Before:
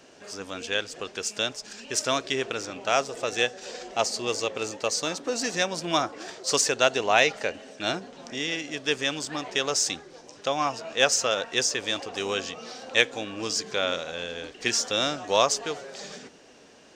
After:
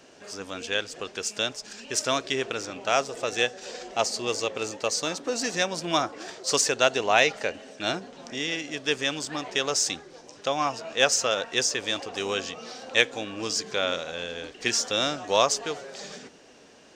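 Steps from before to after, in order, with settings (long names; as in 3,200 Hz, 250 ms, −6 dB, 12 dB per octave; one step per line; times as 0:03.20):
no processing that can be heard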